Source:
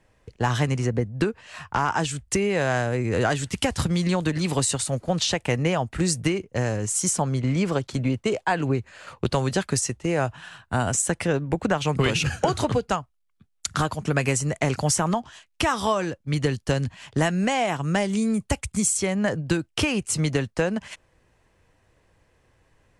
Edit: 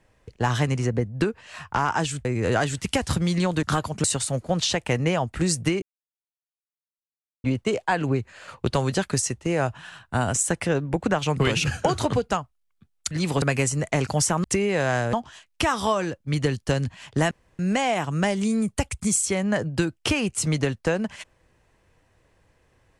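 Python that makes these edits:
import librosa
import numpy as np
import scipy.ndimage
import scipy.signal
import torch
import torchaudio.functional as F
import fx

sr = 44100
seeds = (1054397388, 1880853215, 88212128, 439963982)

y = fx.edit(x, sr, fx.move(start_s=2.25, length_s=0.69, to_s=15.13),
    fx.swap(start_s=4.32, length_s=0.31, other_s=13.7, other_length_s=0.41),
    fx.silence(start_s=6.41, length_s=1.62),
    fx.insert_room_tone(at_s=17.31, length_s=0.28), tone=tone)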